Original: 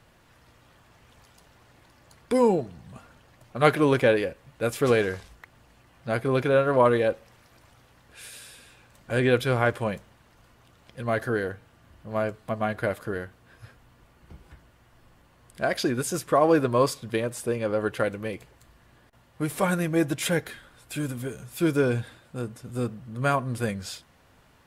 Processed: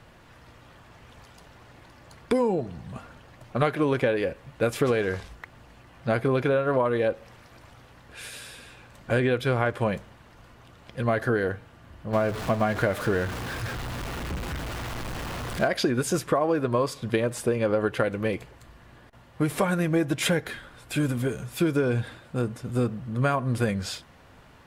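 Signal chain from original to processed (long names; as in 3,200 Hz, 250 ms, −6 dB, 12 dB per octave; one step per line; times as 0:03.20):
0:12.13–0:15.68: converter with a step at zero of −34 dBFS
high-shelf EQ 5,800 Hz −8 dB
downward compressor 16 to 1, threshold −26 dBFS, peak gain reduction 14 dB
level +6.5 dB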